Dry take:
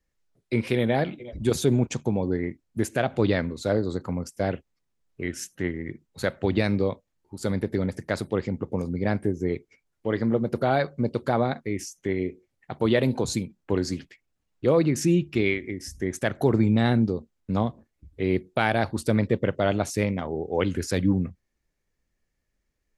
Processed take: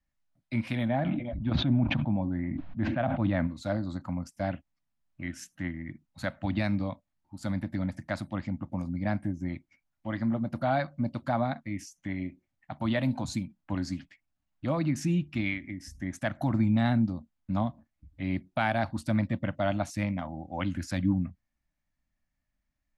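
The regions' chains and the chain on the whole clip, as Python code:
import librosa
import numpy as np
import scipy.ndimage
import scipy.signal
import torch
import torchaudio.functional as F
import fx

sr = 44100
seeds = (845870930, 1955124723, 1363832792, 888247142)

y = fx.chain(x, sr, fx.steep_lowpass(hz=3900.0, slope=36),
    fx.high_shelf(hz=2400.0, db=-11.5),
    fx.sustainer(db_per_s=21.0), at=(0.88, 3.47))
y = scipy.signal.sosfilt(scipy.signal.cheby1(2, 1.0, [290.0, 620.0], 'bandstop', fs=sr, output='sos'), y)
y = fx.high_shelf(y, sr, hz=5100.0, db=-8.5)
y = F.gain(torch.from_numpy(y), -3.0).numpy()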